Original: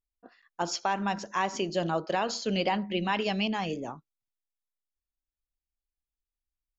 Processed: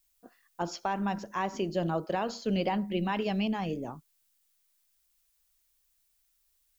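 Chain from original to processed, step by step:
spectral tilt −2 dB per octave
background noise blue −69 dBFS
level −3.5 dB

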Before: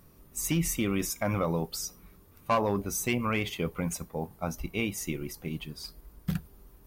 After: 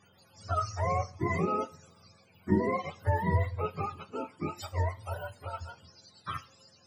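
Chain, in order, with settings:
frequency axis turned over on the octave scale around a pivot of 460 Hz
coupled-rooms reverb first 0.41 s, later 1.5 s, from −24 dB, DRR 13 dB

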